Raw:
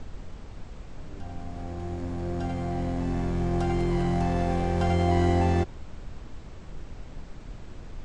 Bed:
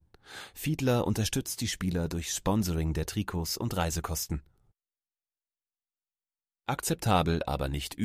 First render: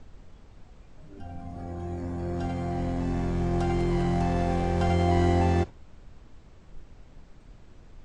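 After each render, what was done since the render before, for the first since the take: noise print and reduce 9 dB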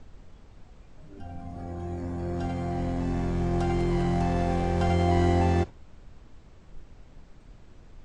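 no audible change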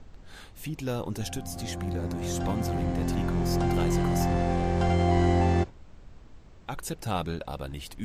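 add bed -5 dB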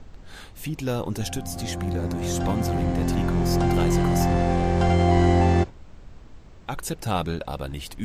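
trim +4.5 dB

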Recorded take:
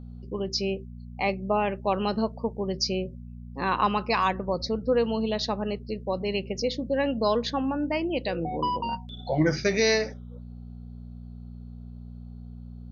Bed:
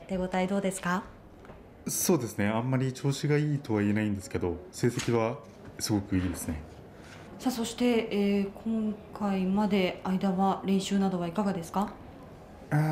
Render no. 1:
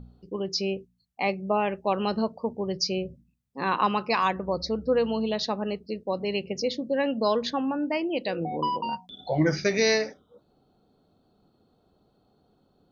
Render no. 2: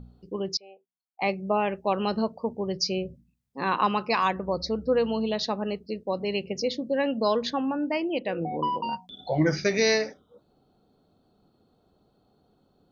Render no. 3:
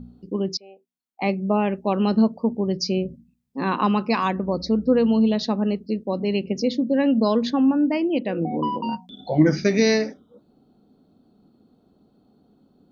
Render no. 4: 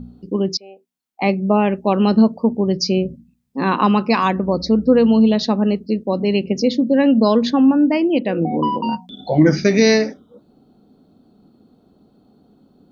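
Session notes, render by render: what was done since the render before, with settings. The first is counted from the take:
de-hum 60 Hz, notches 4
0.57–1.22 s: ladder band-pass 880 Hz, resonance 60%; 8.19–8.77 s: Savitzky-Golay filter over 25 samples
peaking EQ 240 Hz +12 dB 1.1 oct
trim +5.5 dB; peak limiter -3 dBFS, peak gain reduction 3 dB

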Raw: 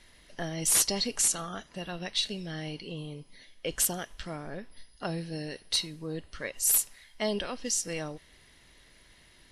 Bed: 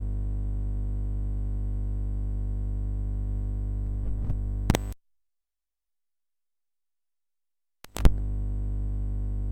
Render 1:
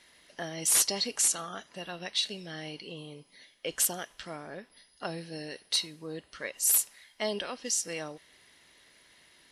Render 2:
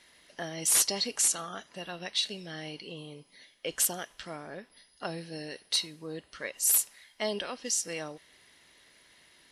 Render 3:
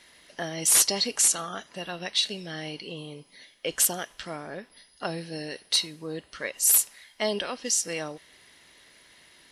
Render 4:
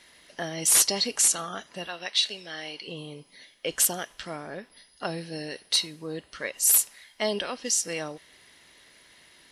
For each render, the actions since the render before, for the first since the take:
high-pass 340 Hz 6 dB/octave
no audible change
trim +4.5 dB
1.87–2.88 s: frequency weighting A

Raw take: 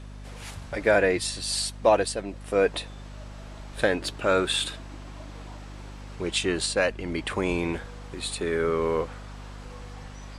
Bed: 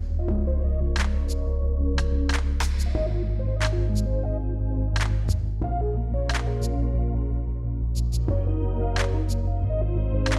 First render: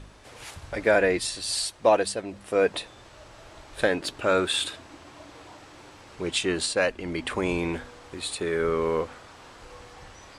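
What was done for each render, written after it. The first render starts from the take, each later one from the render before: de-hum 50 Hz, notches 5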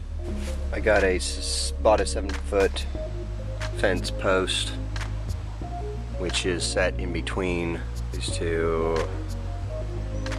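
add bed -7 dB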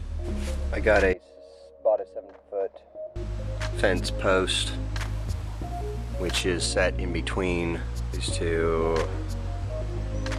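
1.13–3.16 s: band-pass filter 600 Hz, Q 5.3; 4.97–6.41 s: CVSD coder 64 kbps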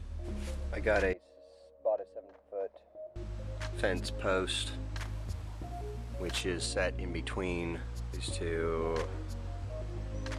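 trim -8.5 dB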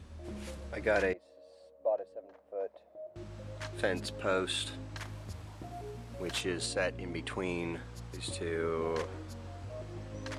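high-pass 100 Hz 12 dB/octave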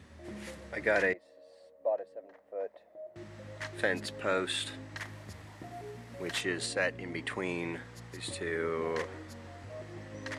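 high-pass 110 Hz 12 dB/octave; peaking EQ 1.9 kHz +10 dB 0.31 oct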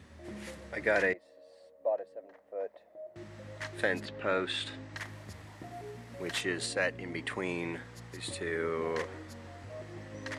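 4.04–4.92 s: low-pass 3.2 kHz -> 7.7 kHz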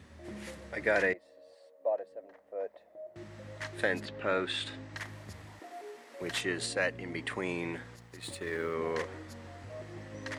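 1.54–2.09 s: high-pass 510 Hz -> 130 Hz; 5.59–6.21 s: high-pass 330 Hz 24 dB/octave; 7.96–8.75 s: companding laws mixed up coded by A

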